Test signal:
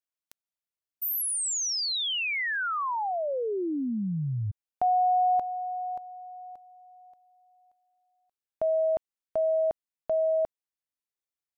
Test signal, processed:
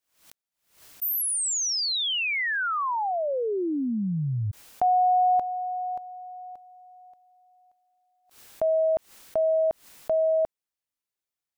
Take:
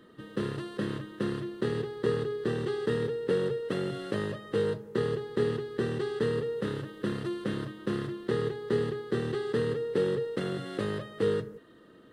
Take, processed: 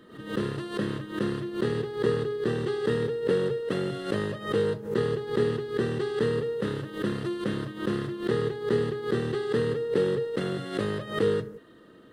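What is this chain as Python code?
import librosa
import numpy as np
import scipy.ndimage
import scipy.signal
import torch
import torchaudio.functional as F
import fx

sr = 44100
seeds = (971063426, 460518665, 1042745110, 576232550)

y = fx.pre_swell(x, sr, db_per_s=120.0)
y = y * 10.0 ** (2.5 / 20.0)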